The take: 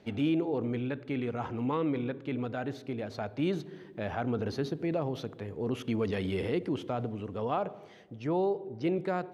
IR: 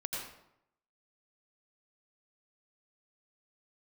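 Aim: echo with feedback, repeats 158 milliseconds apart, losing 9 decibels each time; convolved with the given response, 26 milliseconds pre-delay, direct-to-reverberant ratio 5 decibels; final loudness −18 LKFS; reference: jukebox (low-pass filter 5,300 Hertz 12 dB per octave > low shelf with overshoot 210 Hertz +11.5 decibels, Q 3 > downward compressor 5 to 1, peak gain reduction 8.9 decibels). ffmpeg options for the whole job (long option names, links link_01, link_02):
-filter_complex "[0:a]aecho=1:1:158|316|474|632:0.355|0.124|0.0435|0.0152,asplit=2[link_01][link_02];[1:a]atrim=start_sample=2205,adelay=26[link_03];[link_02][link_03]afir=irnorm=-1:irlink=0,volume=-7dB[link_04];[link_01][link_04]amix=inputs=2:normalize=0,lowpass=5300,lowshelf=frequency=210:width_type=q:width=3:gain=11.5,acompressor=threshold=-22dB:ratio=5,volume=9dB"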